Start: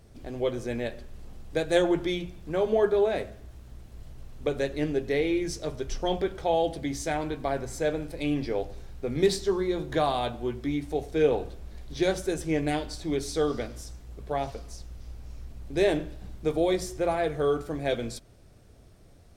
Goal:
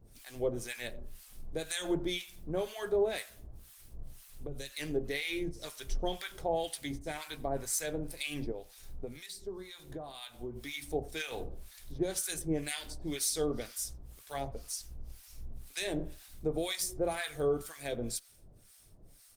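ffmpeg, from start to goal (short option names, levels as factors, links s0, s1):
-filter_complex "[0:a]crystalizer=i=6.5:c=0,alimiter=limit=0.188:level=0:latency=1:release=124,asplit=3[s0][s1][s2];[s0]afade=t=out:st=8.5:d=0.02[s3];[s1]acompressor=threshold=0.0224:ratio=6,afade=t=in:st=8.5:d=0.02,afade=t=out:st=10.55:d=0.02[s4];[s2]afade=t=in:st=10.55:d=0.02[s5];[s3][s4][s5]amix=inputs=3:normalize=0,acrossover=split=980[s6][s7];[s6]aeval=exprs='val(0)*(1-1/2+1/2*cos(2*PI*2*n/s))':c=same[s8];[s7]aeval=exprs='val(0)*(1-1/2-1/2*cos(2*PI*2*n/s))':c=same[s9];[s8][s9]amix=inputs=2:normalize=0,lowshelf=f=110:g=9,asettb=1/sr,asplit=3[s10][s11][s12];[s10]atrim=end=4.094[s13];[s11]atrim=start=4.09:end=4.8,asetpts=PTS-STARTPTS,afade=t=in:d=0.004:c=qsin,afade=t=out:st=0.706:d=0.004:c=qsin,acrossover=split=180|3000[s14][s15][s16];[s15]acompressor=threshold=0.0141:ratio=10[s17];[s14][s17][s16]amix=inputs=3:normalize=0[s18];[s12]atrim=start=4.796[s19];[s13][s18]acrossfade=d=0.004:c1=hsin:c2=qsin[s20];[s20][s19]acrossfade=d=0.004:c1=qsin:c2=hsin,equalizer=f=67:w=1.3:g=-7,asplit=2[s21][s22];[s22]adelay=90,highpass=300,lowpass=3400,asoftclip=type=hard:threshold=0.0631,volume=0.0631[s23];[s21][s23]amix=inputs=2:normalize=0,volume=0.596" -ar 48000 -c:a libopus -b:a 32k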